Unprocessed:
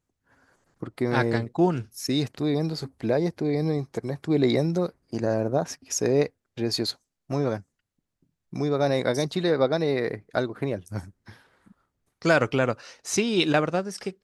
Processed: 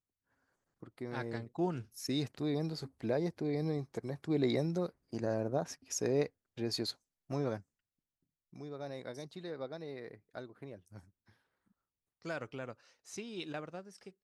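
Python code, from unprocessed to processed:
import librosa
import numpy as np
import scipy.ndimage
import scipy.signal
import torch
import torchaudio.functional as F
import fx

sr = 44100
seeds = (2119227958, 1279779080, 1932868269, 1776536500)

y = fx.gain(x, sr, db=fx.line((1.2, -16.5), (1.94, -9.5), (7.55, -9.5), (8.62, -20.0)))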